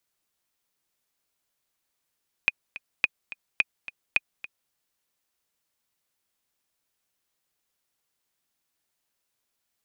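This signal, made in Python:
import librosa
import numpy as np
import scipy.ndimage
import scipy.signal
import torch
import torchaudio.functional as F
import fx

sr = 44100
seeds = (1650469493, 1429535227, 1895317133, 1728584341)

y = fx.click_track(sr, bpm=214, beats=2, bars=4, hz=2480.0, accent_db=16.5, level_db=-7.0)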